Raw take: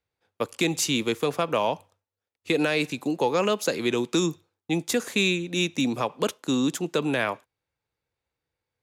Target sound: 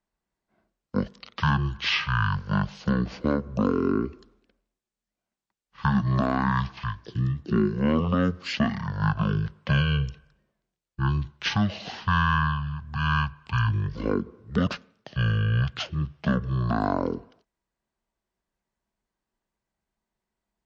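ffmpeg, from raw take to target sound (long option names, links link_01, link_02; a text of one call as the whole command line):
ffmpeg -i in.wav -af "asetrate=18846,aresample=44100" out.wav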